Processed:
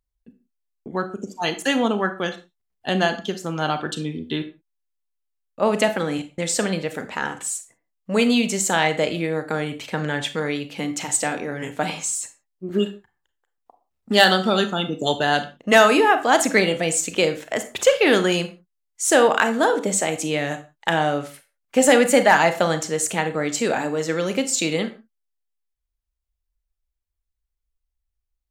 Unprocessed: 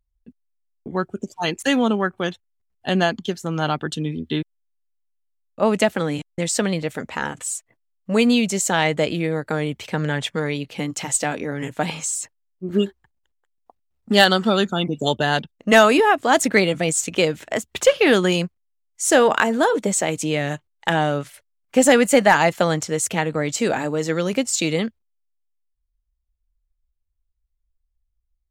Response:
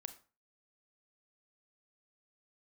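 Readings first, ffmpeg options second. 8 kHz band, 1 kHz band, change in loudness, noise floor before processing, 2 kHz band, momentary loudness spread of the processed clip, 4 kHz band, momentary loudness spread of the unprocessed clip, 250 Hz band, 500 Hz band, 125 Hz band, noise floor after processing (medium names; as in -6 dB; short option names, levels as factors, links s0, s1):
0.0 dB, 0.0 dB, -0.5 dB, -73 dBFS, 0.0 dB, 13 LU, 0.0 dB, 12 LU, -2.0 dB, -0.5 dB, -4.0 dB, -80 dBFS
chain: -filter_complex "[0:a]lowshelf=f=170:g=-7[s0];[1:a]atrim=start_sample=2205,afade=t=out:st=0.24:d=0.01,atrim=end_sample=11025[s1];[s0][s1]afir=irnorm=-1:irlink=0,volume=1.68"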